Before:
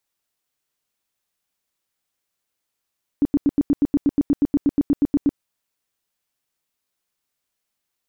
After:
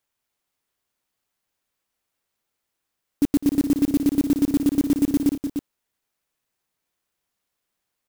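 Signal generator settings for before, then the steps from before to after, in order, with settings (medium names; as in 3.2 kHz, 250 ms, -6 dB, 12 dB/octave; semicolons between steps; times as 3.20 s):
tone bursts 286 Hz, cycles 9, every 0.12 s, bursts 18, -12.5 dBFS
multi-tap echo 205/299 ms -14.5/-7.5 dB; sampling jitter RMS 0.06 ms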